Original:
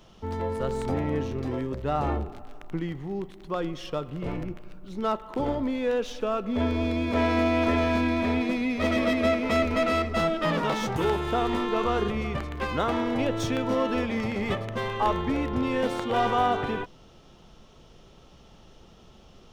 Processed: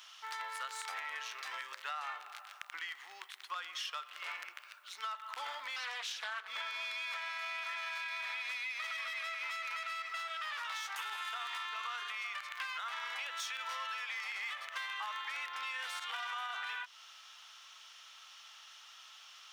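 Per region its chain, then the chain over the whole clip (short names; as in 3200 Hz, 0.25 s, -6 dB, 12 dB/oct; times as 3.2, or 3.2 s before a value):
5.76–6.48 notches 50/100/150/200/250/300/350/400/450/500 Hz + Doppler distortion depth 0.48 ms
whole clip: HPF 1300 Hz 24 dB/oct; limiter -29.5 dBFS; compressor 5:1, threshold -45 dBFS; gain +7 dB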